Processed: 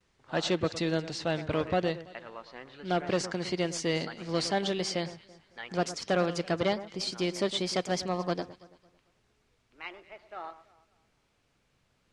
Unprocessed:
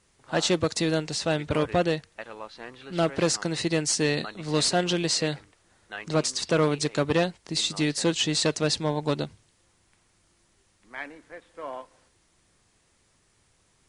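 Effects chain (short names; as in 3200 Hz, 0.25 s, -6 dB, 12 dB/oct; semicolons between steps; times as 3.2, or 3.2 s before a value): speed glide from 99% -> 130%; gate with hold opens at -57 dBFS; LPF 4900 Hz 12 dB/oct; echo with dull and thin repeats by turns 0.111 s, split 1900 Hz, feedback 56%, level -13.5 dB; gain -4.5 dB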